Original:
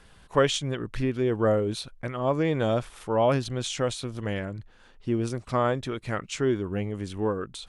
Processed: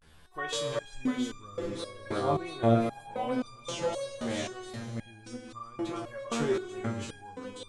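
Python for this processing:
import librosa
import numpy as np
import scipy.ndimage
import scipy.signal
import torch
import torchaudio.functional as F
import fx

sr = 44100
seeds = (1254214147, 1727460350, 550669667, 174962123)

y = fx.vibrato(x, sr, rate_hz=0.51, depth_cents=96.0)
y = fx.echo_multitap(y, sr, ms=(367, 693), db=(-9.0, -6.0))
y = fx.rev_schroeder(y, sr, rt60_s=3.4, comb_ms=27, drr_db=6.5)
y = fx.resonator_held(y, sr, hz=3.8, low_hz=78.0, high_hz=1200.0)
y = y * 10.0 ** (5.0 / 20.0)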